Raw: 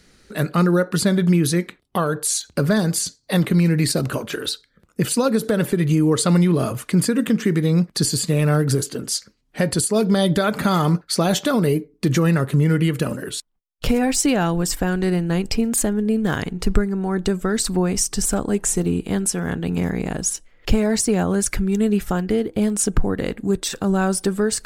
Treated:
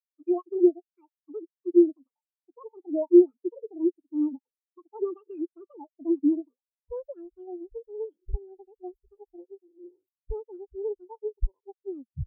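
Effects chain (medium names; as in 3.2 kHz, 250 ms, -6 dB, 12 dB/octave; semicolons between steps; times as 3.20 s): tape stop on the ending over 0.75 s; wide varispeed 2.01×; spectral contrast expander 4:1; trim -2.5 dB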